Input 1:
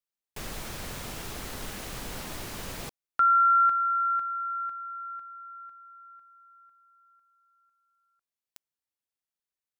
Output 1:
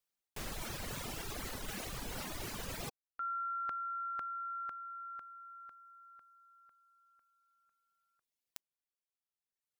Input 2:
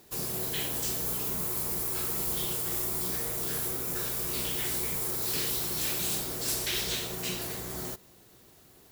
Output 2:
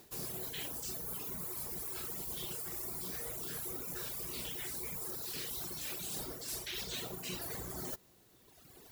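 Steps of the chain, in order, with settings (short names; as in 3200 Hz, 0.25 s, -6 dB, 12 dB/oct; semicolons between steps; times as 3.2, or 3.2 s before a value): reverb removal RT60 1.8 s; reverse; compressor 10:1, threshold -42 dBFS; reverse; gain +4 dB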